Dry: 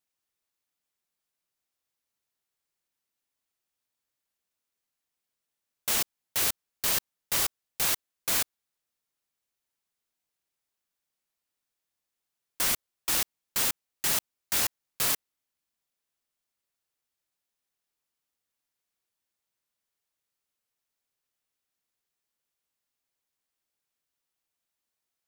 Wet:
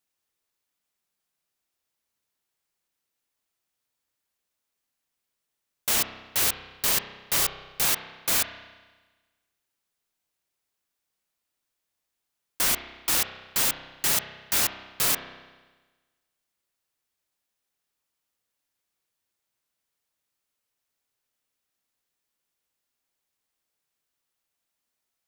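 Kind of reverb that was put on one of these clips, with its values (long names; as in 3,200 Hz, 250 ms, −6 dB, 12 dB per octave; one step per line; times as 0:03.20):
spring reverb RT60 1.3 s, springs 31 ms, chirp 60 ms, DRR 8 dB
level +3 dB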